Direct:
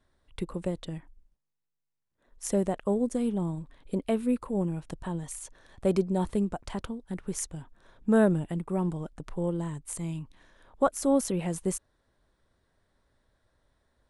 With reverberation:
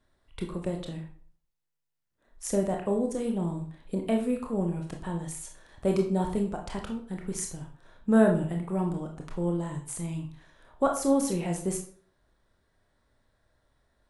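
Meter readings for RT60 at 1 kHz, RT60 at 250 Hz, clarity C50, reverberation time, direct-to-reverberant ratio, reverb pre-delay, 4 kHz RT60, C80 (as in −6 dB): 0.50 s, 0.50 s, 7.5 dB, 0.50 s, 1.5 dB, 22 ms, 0.35 s, 12.0 dB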